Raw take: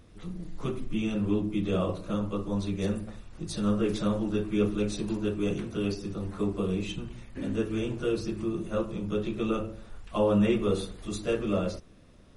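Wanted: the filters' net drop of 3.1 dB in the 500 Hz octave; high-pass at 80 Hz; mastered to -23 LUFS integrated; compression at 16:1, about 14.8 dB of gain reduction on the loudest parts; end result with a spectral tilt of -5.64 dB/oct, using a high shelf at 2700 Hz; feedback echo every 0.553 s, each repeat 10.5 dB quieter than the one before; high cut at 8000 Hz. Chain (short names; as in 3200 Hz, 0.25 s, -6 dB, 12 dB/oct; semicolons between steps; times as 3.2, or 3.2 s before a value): HPF 80 Hz; LPF 8000 Hz; bell 500 Hz -4 dB; high shelf 2700 Hz +4 dB; compressor 16:1, threshold -36 dBFS; feedback echo 0.553 s, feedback 30%, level -10.5 dB; gain +18 dB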